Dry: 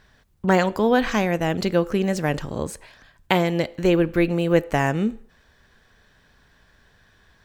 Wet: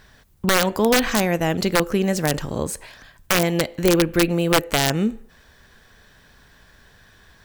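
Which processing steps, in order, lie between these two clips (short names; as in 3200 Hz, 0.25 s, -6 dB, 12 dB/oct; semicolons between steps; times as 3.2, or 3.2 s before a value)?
high shelf 7800 Hz +8.5 dB; in parallel at -2 dB: compressor 4:1, threshold -33 dBFS, peak gain reduction 17.5 dB; on the sum: wrapped overs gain 8 dB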